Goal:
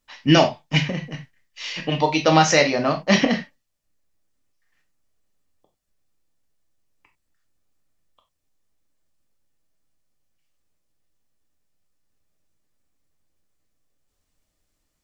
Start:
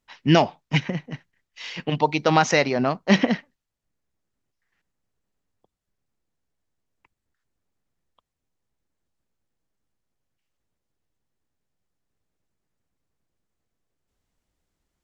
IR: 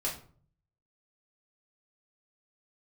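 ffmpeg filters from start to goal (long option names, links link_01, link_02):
-filter_complex "[0:a]asplit=2[link_01][link_02];[1:a]atrim=start_sample=2205,atrim=end_sample=4410,highshelf=frequency=2500:gain=11.5[link_03];[link_02][link_03]afir=irnorm=-1:irlink=0,volume=-5.5dB[link_04];[link_01][link_04]amix=inputs=2:normalize=0,volume=-2.5dB"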